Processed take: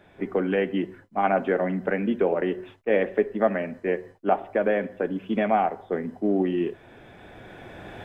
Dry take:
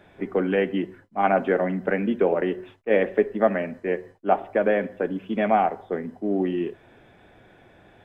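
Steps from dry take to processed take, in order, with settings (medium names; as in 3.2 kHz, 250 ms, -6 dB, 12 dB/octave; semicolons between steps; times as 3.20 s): recorder AGC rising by 8.6 dB/s; trim -2 dB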